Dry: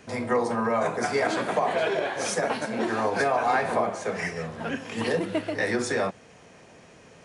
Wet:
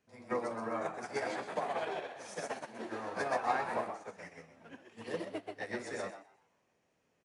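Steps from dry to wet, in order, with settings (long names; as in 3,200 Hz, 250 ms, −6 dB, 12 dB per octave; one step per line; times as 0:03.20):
echo with shifted repeats 127 ms, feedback 39%, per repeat +97 Hz, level −3.5 dB
expander for the loud parts 2.5 to 1, over −32 dBFS
level −8 dB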